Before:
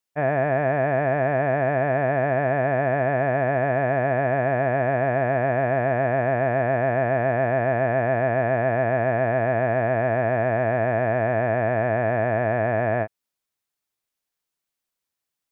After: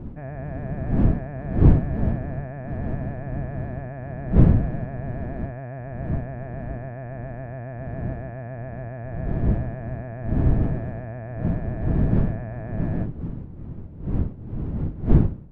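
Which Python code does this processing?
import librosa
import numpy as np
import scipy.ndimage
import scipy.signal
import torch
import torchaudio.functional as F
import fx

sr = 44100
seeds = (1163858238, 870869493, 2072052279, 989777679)

y = fx.dmg_wind(x, sr, seeds[0], corner_hz=290.0, level_db=-17.0)
y = fx.bass_treble(y, sr, bass_db=13, treble_db=-8)
y = F.gain(torch.from_numpy(y), -17.5).numpy()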